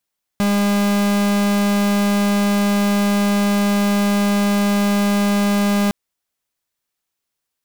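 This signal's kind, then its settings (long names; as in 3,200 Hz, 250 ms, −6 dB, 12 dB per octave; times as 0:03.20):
pulse wave 203 Hz, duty 44% −16.5 dBFS 5.51 s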